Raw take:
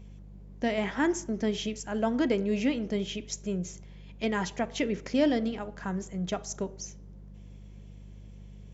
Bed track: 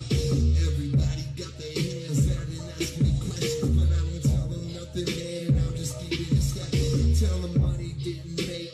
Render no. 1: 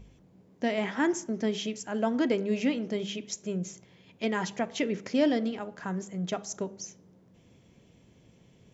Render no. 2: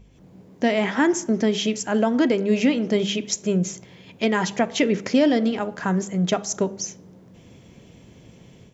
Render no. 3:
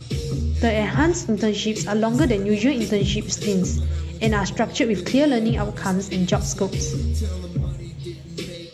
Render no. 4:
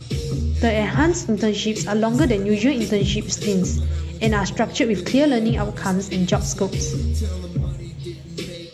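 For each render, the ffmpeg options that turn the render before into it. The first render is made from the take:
ffmpeg -i in.wav -af "bandreject=frequency=50:width_type=h:width=4,bandreject=frequency=100:width_type=h:width=4,bandreject=frequency=150:width_type=h:width=4,bandreject=frequency=200:width_type=h:width=4" out.wav
ffmpeg -i in.wav -af "dynaudnorm=framelen=120:gausssize=3:maxgain=11dB,alimiter=limit=-9.5dB:level=0:latency=1:release=288" out.wav
ffmpeg -i in.wav -i bed.wav -filter_complex "[1:a]volume=-1.5dB[link_01];[0:a][link_01]amix=inputs=2:normalize=0" out.wav
ffmpeg -i in.wav -af "volume=1dB" out.wav

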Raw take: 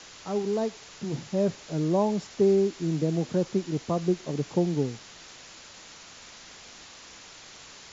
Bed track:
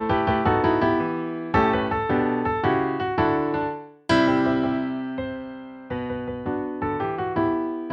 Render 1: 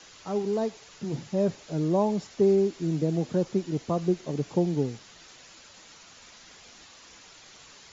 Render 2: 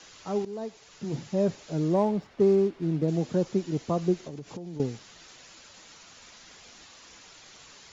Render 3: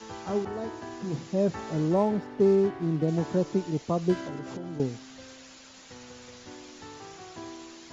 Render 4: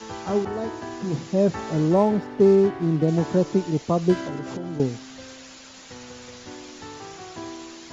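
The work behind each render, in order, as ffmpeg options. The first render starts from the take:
ffmpeg -i in.wav -af "afftdn=noise_reduction=6:noise_floor=-48" out.wav
ffmpeg -i in.wav -filter_complex "[0:a]asettb=1/sr,asplit=3[link_01][link_02][link_03];[link_01]atrim=end=1.944[link_04];[link_02]atrim=start=1.94:end=3.08,asetpts=PTS-STARTPTS,afade=type=in:duration=0.004:curve=qsin,afade=type=out:start_time=1.136:duration=0.004:curve=qsin,adynamicsmooth=sensitivity=7.5:basefreq=2000[link_05];[link_03]atrim=start=3.076[link_06];[link_04][link_05]acrossfade=duration=0.004:curve1=hsin:curve2=qsin[link_07];[link_07][link_06]acrossfade=duration=0.004:curve1=qsin:curve2=hsin,asettb=1/sr,asplit=3[link_08][link_09][link_10];[link_08]atrim=end=4.224[link_11];[link_09]atrim=start=4.22:end=4.8,asetpts=PTS-STARTPTS,afade=type=in:duration=0.004:curve=qsin,afade=type=out:start_time=0.576:duration=0.004:curve=qsin,acompressor=threshold=-34dB:ratio=16:attack=3.2:release=140:knee=1:detection=peak[link_12];[link_10]atrim=start=4.796[link_13];[link_11][link_12]acrossfade=duration=0.004:curve1=hsin:curve2=qsin[link_14];[link_14][link_13]acrossfade=duration=0.004:curve1=qsin:curve2=hsin,asplit=2[link_15][link_16];[link_15]atrim=end=0.45,asetpts=PTS-STARTPTS,afade=type=out:start_time=0.446:duration=0.004:curve=hsin:silence=0.237137[link_17];[link_16]atrim=start=0.45,asetpts=PTS-STARTPTS,afade=type=in:duration=0.71:silence=0.237137[link_18];[link_17][link_18]concat=n=2:v=0:a=1" out.wav
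ffmpeg -i in.wav -i bed.wav -filter_complex "[1:a]volume=-19.5dB[link_01];[0:a][link_01]amix=inputs=2:normalize=0" out.wav
ffmpeg -i in.wav -af "volume=5.5dB" out.wav

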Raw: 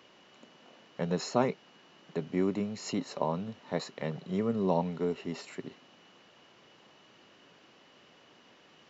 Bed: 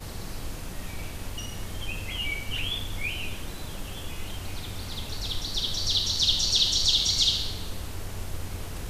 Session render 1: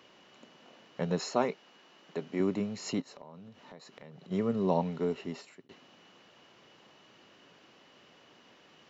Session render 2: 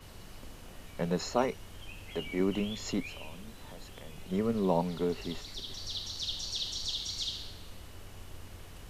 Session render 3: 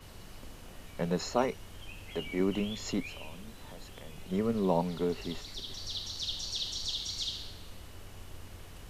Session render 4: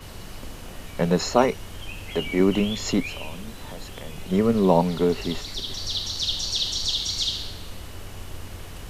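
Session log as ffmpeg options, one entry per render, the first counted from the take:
ffmpeg -i in.wav -filter_complex "[0:a]asettb=1/sr,asplit=3[link_01][link_02][link_03];[link_01]atrim=end=1.194[link_04];[link_02]atrim=start=1.19:end=2.4,asetpts=PTS-STARTPTS,afade=type=in:duration=0.004:curve=qsin,afade=type=out:start_time=1.206:duration=0.004:curve=qsin,equalizer=frequency=93:width_type=o:width=1.8:gain=-12.5[link_05];[link_03]atrim=start=2.396[link_06];[link_04][link_05]acrossfade=duration=0.004:curve1=hsin:curve2=qsin[link_07];[link_07][link_06]acrossfade=duration=0.004:curve1=qsin:curve2=hsin,asplit=3[link_08][link_09][link_10];[link_08]afade=type=out:start_time=3:duration=0.02[link_11];[link_09]acompressor=threshold=-49dB:ratio=4:attack=3.2:release=140:knee=1:detection=peak,afade=type=in:start_time=3:duration=0.02,afade=type=out:start_time=4.3:duration=0.02[link_12];[link_10]afade=type=in:start_time=4.3:duration=0.02[link_13];[link_11][link_12][link_13]amix=inputs=3:normalize=0,asplit=2[link_14][link_15];[link_14]atrim=end=5.69,asetpts=PTS-STARTPTS,afade=type=out:start_time=5.21:duration=0.48[link_16];[link_15]atrim=start=5.69,asetpts=PTS-STARTPTS,afade=type=in:duration=0.004:curve=hsin[link_17];[link_16][link_17]concat=n=2:v=0:a=1" out.wav
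ffmpeg -i in.wav -i bed.wav -filter_complex "[1:a]volume=-13dB[link_01];[0:a][link_01]amix=inputs=2:normalize=0" out.wav
ffmpeg -i in.wav -af anull out.wav
ffmpeg -i in.wav -af "volume=10dB" out.wav

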